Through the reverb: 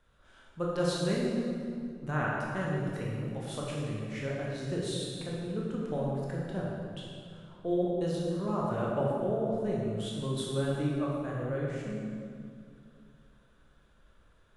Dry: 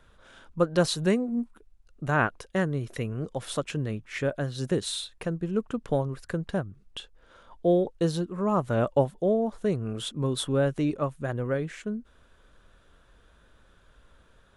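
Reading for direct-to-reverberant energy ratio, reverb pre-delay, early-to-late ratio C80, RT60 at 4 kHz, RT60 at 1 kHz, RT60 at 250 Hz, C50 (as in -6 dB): -4.5 dB, 15 ms, 0.0 dB, 1.6 s, 2.2 s, 2.9 s, -1.5 dB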